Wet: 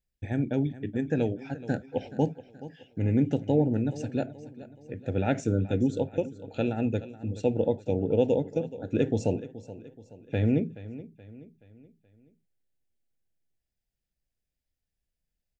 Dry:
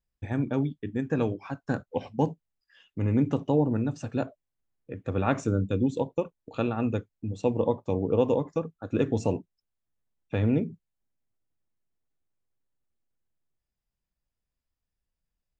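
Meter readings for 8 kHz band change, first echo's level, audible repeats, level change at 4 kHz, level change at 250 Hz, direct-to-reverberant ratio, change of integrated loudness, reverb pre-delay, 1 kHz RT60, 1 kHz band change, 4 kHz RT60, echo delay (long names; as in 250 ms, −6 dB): can't be measured, −16.0 dB, 3, 0.0 dB, 0.0 dB, no reverb audible, 0.0 dB, no reverb audible, no reverb audible, −4.5 dB, no reverb audible, 426 ms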